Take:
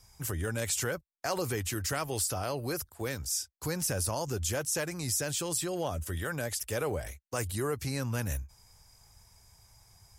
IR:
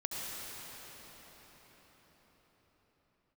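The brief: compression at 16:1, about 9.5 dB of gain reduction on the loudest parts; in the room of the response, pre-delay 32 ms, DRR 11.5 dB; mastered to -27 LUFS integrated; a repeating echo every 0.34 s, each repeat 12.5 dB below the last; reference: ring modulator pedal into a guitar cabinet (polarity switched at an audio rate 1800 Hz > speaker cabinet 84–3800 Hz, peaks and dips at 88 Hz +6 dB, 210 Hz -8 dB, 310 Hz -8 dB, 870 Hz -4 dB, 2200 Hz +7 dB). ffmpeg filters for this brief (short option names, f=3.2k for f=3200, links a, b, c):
-filter_complex "[0:a]acompressor=threshold=-37dB:ratio=16,aecho=1:1:340|680|1020:0.237|0.0569|0.0137,asplit=2[a][b];[1:a]atrim=start_sample=2205,adelay=32[c];[b][c]afir=irnorm=-1:irlink=0,volume=-15.5dB[d];[a][d]amix=inputs=2:normalize=0,aeval=exprs='val(0)*sgn(sin(2*PI*1800*n/s))':c=same,highpass=84,equalizer=f=88:t=q:w=4:g=6,equalizer=f=210:t=q:w=4:g=-8,equalizer=f=310:t=q:w=4:g=-8,equalizer=f=870:t=q:w=4:g=-4,equalizer=f=2.2k:t=q:w=4:g=7,lowpass=f=3.8k:w=0.5412,lowpass=f=3.8k:w=1.3066,volume=11.5dB"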